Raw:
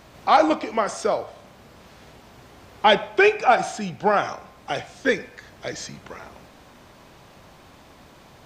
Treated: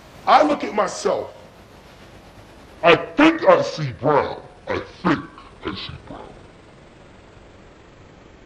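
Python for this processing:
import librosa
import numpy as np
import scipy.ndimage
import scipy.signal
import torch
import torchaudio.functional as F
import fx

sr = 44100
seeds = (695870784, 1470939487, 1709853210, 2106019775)

y = fx.pitch_glide(x, sr, semitones=-12.0, runs='starting unshifted')
y = fx.doubler(y, sr, ms=21.0, db=-13.5)
y = fx.doppler_dist(y, sr, depth_ms=0.39)
y = y * librosa.db_to_amplitude(4.5)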